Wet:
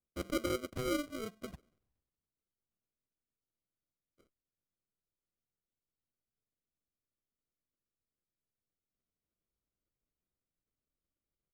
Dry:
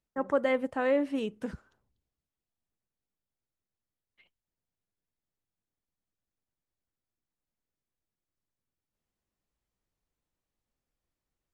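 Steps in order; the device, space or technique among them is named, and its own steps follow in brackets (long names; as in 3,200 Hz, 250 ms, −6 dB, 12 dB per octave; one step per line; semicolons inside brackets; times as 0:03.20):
dynamic equaliser 270 Hz, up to −6 dB, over −42 dBFS, Q 2.7
crushed at another speed (tape speed factor 1.25×; decimation without filtering 40×; tape speed factor 0.8×)
level −7 dB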